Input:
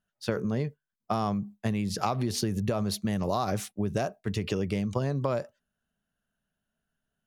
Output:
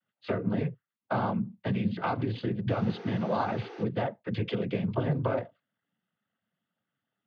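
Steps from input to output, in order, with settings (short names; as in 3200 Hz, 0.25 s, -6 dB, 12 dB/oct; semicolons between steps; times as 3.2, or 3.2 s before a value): downsampling 8000 Hz; 2.67–3.82 buzz 400 Hz, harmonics 12, -44 dBFS -7 dB/oct; noise vocoder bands 16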